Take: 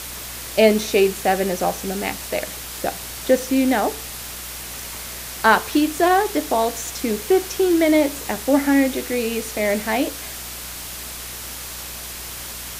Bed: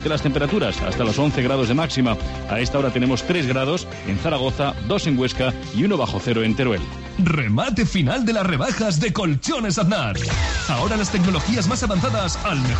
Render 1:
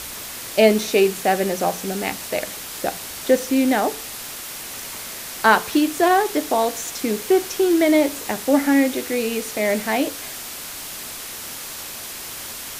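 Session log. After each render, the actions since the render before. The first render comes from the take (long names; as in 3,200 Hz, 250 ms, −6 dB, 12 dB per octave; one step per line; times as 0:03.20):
hum removal 60 Hz, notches 3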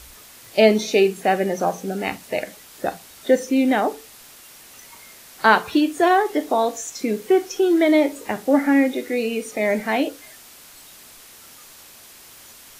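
noise reduction from a noise print 12 dB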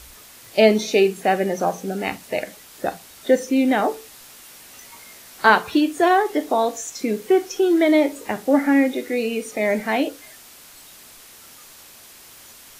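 0:03.78–0:05.50: double-tracking delay 16 ms −6 dB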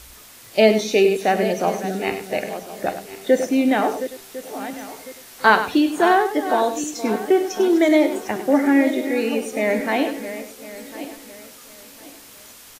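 feedback delay that plays each chunk backwards 526 ms, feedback 51%, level −11.5 dB
single-tap delay 100 ms −11 dB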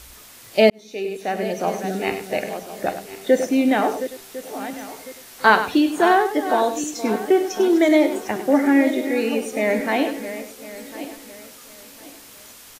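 0:00.70–0:01.94: fade in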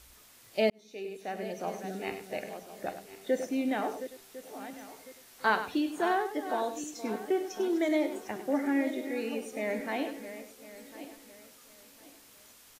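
level −12.5 dB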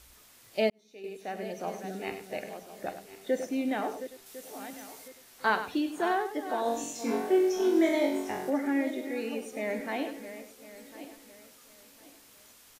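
0:00.64–0:01.04: expander for the loud parts, over −35 dBFS
0:04.26–0:05.08: high-shelf EQ 3,800 Hz +7 dB
0:06.63–0:08.50: flutter between parallel walls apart 3.7 metres, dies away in 0.58 s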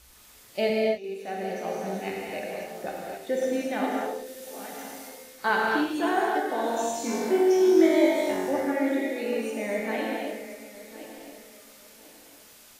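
reverb whose tail is shaped and stops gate 300 ms flat, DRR −2.5 dB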